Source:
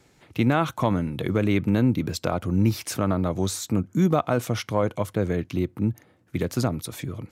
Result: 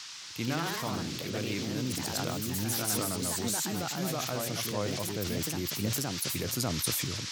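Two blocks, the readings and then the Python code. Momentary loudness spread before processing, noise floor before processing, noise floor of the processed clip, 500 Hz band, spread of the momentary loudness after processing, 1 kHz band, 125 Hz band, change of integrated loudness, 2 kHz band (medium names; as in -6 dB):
7 LU, -60 dBFS, -42 dBFS, -9.5 dB, 4 LU, -8.0 dB, -10.0 dB, -6.5 dB, -3.5 dB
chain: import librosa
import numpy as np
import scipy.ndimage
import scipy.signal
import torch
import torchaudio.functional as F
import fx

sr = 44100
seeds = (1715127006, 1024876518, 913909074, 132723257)

y = fx.echo_pitch(x, sr, ms=129, semitones=2, count=3, db_per_echo=-3.0)
y = fx.rider(y, sr, range_db=4, speed_s=0.5)
y = fx.dmg_noise_band(y, sr, seeds[0], low_hz=880.0, high_hz=5800.0, level_db=-39.0)
y = scipy.signal.lfilter([1.0, -0.8], [1.0], y)
y = fx.sustainer(y, sr, db_per_s=21.0)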